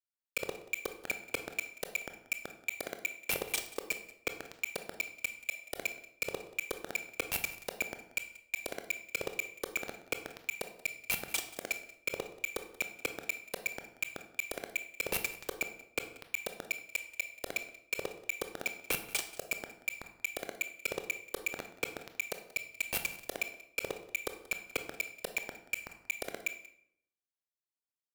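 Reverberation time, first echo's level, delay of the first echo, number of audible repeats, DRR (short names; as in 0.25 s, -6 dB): 0.70 s, -19.5 dB, 0.183 s, 1, 6.5 dB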